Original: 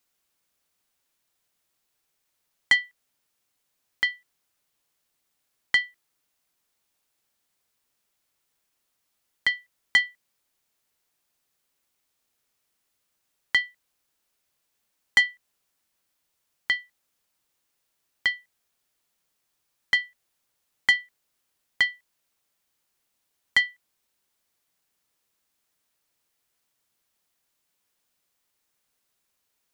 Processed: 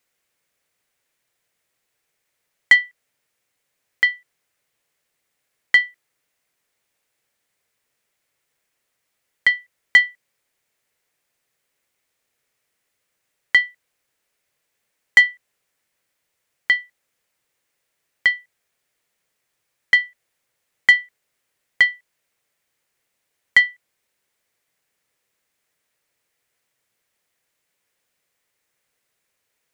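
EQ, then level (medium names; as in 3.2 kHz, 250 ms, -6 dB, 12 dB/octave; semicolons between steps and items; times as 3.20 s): ten-band graphic EQ 125 Hz +6 dB, 500 Hz +8 dB, 2 kHz +9 dB, 8 kHz +3 dB; -1.5 dB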